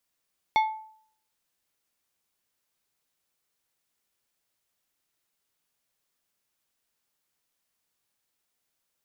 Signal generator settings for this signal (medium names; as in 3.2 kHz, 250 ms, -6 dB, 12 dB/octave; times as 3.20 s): glass hit plate, lowest mode 873 Hz, decay 0.59 s, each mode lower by 7.5 dB, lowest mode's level -16.5 dB